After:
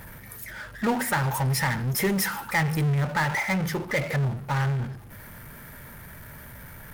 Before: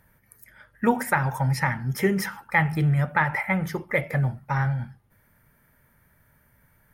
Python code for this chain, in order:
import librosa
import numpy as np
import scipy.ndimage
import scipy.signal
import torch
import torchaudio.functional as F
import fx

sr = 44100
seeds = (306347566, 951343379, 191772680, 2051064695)

y = fx.high_shelf(x, sr, hz=5500.0, db=10.5, at=(1.13, 2.93))
y = fx.power_curve(y, sr, exponent=0.5)
y = y * librosa.db_to_amplitude(-8.0)